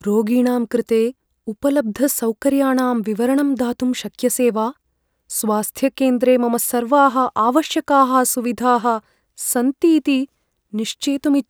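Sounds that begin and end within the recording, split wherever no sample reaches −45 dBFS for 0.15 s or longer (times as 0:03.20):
0:01.47–0:04.73
0:05.30–0:09.00
0:09.38–0:10.25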